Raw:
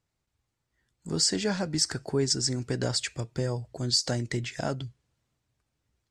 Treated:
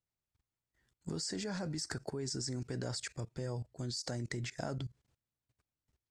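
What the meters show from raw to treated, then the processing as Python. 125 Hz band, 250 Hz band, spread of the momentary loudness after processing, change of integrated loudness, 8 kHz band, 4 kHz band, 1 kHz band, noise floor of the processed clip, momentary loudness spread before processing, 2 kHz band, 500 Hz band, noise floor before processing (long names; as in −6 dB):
−8.0 dB, −9.0 dB, 5 LU, −11.5 dB, −13.0 dB, −14.0 dB, −9.0 dB, below −85 dBFS, 9 LU, −9.0 dB, −10.5 dB, −82 dBFS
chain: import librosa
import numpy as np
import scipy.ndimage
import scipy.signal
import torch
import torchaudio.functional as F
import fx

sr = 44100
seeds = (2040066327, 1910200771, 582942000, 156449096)

y = fx.level_steps(x, sr, step_db=19)
y = fx.dynamic_eq(y, sr, hz=3000.0, q=2.0, threshold_db=-59.0, ratio=4.0, max_db=-7)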